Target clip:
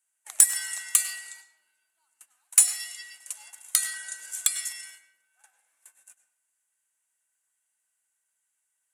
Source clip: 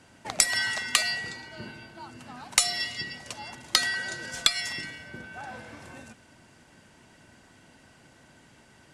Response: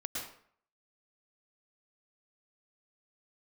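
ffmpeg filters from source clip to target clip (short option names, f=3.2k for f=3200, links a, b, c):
-filter_complex "[0:a]aexciter=amount=12.4:drive=5.6:freq=7.2k,aeval=exprs='(tanh(0.562*val(0)+0.35)-tanh(0.35))/0.562':c=same,highpass=1.3k,agate=range=-19dB:threshold=-40dB:ratio=16:detection=peak,asplit=2[a][b];[1:a]atrim=start_sample=2205,asetrate=48510,aresample=44100,highshelf=f=9.3k:g=-9[c];[b][c]afir=irnorm=-1:irlink=0,volume=-8dB[d];[a][d]amix=inputs=2:normalize=0,volume=-9.5dB"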